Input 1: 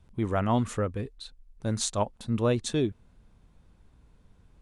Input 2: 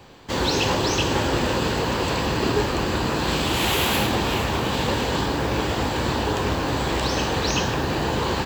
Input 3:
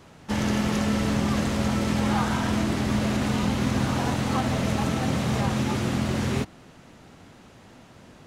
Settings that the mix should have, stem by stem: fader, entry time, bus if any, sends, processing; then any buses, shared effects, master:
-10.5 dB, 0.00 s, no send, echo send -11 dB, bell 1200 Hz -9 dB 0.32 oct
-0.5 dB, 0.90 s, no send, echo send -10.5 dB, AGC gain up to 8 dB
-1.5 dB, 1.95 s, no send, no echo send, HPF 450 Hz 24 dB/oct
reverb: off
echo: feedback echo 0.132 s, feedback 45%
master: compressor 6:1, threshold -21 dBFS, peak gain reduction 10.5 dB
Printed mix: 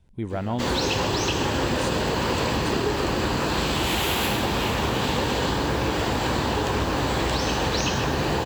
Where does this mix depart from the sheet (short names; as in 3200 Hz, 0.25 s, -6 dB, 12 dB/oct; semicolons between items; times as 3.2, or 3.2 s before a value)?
stem 1 -10.5 dB -> -1.0 dB; stem 2: entry 0.90 s -> 0.30 s